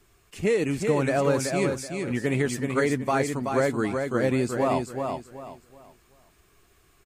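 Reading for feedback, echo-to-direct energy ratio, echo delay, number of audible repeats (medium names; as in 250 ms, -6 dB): 29%, -4.5 dB, 378 ms, 3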